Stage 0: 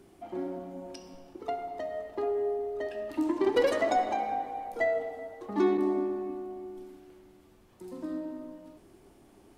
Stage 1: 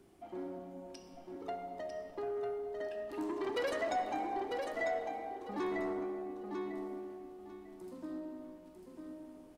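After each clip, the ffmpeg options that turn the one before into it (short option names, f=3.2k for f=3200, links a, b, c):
-filter_complex "[0:a]aecho=1:1:948|1896|2844:0.501|0.11|0.0243,acrossover=split=820[a][b];[a]asoftclip=type=tanh:threshold=-28dB[c];[c][b]amix=inputs=2:normalize=0,volume=-6dB"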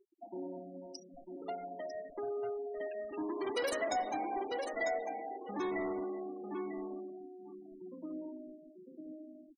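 -af "crystalizer=i=1:c=0,afftfilt=real='re*gte(hypot(re,im),0.00708)':imag='im*gte(hypot(re,im),0.00708)':win_size=1024:overlap=0.75,highshelf=f=6.9k:g=11.5"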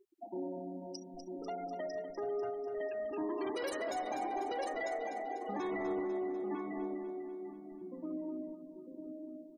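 -af "alimiter=level_in=9.5dB:limit=-24dB:level=0:latency=1:release=110,volume=-9.5dB,aecho=1:1:247|494|741|988|1235|1482|1729:0.355|0.209|0.124|0.0729|0.043|0.0254|0.015,volume=2.5dB"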